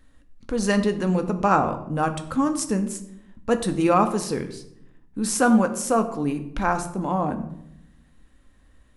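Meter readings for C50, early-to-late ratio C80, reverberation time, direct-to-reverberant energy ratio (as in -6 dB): 12.0 dB, 14.0 dB, 0.75 s, 7.0 dB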